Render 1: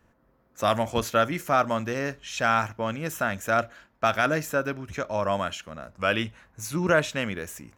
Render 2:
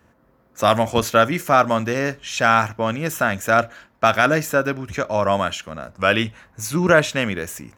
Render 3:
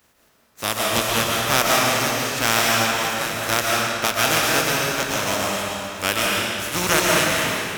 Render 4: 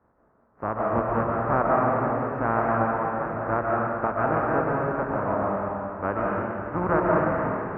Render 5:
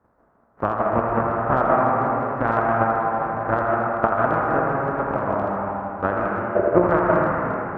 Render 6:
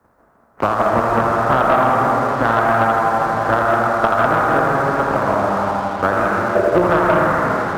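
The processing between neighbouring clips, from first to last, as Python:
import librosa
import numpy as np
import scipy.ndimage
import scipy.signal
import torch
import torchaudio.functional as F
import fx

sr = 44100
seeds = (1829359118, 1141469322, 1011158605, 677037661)

y1 = scipy.signal.sosfilt(scipy.signal.butter(2, 54.0, 'highpass', fs=sr, output='sos'), x)
y1 = F.gain(torch.from_numpy(y1), 7.0).numpy()
y2 = fx.spec_flatten(y1, sr, power=0.34)
y2 = fx.tremolo_random(y2, sr, seeds[0], hz=3.5, depth_pct=55)
y2 = fx.rev_freeverb(y2, sr, rt60_s=2.5, hf_ratio=0.85, predelay_ms=95, drr_db=-4.0)
y2 = F.gain(torch.from_numpy(y2), -3.5).numpy()
y3 = scipy.signal.sosfilt(scipy.signal.cheby2(4, 50, 3300.0, 'lowpass', fs=sr, output='sos'), y2)
y4 = fx.spec_box(y3, sr, start_s=6.55, length_s=0.27, low_hz=340.0, high_hz=710.0, gain_db=12)
y4 = fx.transient(y4, sr, attack_db=9, sustain_db=5)
y4 = fx.echo_banded(y4, sr, ms=82, feedback_pct=70, hz=1100.0, wet_db=-4)
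y5 = fx.high_shelf(y4, sr, hz=2100.0, db=10.0)
y5 = fx.leveller(y5, sr, passes=2)
y5 = fx.band_squash(y5, sr, depth_pct=40)
y5 = F.gain(torch.from_numpy(y5), -3.5).numpy()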